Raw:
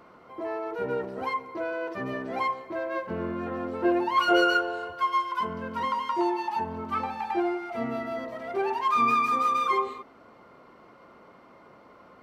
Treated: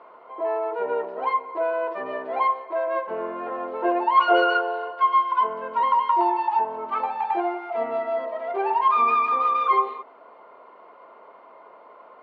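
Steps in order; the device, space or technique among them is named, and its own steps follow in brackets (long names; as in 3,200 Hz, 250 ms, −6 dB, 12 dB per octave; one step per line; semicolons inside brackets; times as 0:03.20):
phone earpiece (loudspeaker in its box 410–3,600 Hz, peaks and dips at 440 Hz +6 dB, 650 Hz +8 dB, 970 Hz +10 dB)
0:02.31–0:02.86: high-pass filter 150 Hz → 420 Hz 12 dB per octave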